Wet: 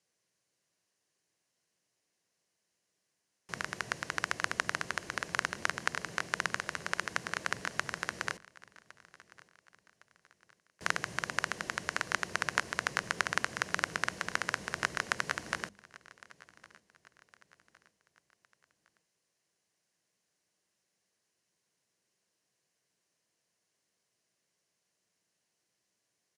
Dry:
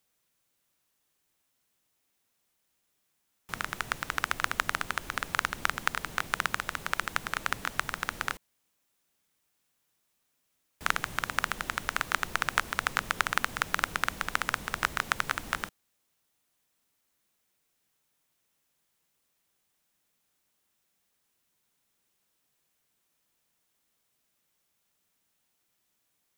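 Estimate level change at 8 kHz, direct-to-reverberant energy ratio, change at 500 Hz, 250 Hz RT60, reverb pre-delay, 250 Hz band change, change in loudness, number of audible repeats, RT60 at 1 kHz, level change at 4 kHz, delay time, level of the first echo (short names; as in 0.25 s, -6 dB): -2.0 dB, none, +0.5 dB, none, none, -2.0 dB, -3.5 dB, 2, none, -3.5 dB, 1.11 s, -22.0 dB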